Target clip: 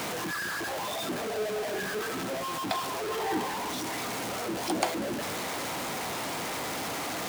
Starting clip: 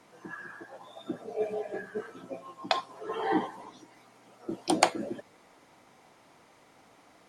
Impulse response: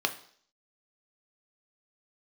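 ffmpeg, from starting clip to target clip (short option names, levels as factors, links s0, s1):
-af "aeval=exprs='val(0)+0.5*0.1*sgn(val(0))':c=same,highpass=67,volume=0.398"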